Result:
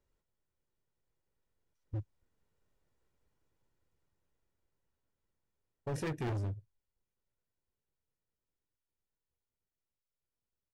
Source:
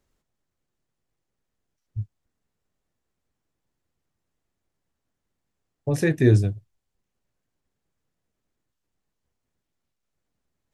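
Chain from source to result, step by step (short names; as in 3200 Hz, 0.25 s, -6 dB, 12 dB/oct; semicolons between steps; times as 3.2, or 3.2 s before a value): Doppler pass-by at 3, 6 m/s, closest 7 m; high shelf 3000 Hz -6 dB; comb 2.1 ms, depth 32%; overloaded stage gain 34.5 dB; gain +1 dB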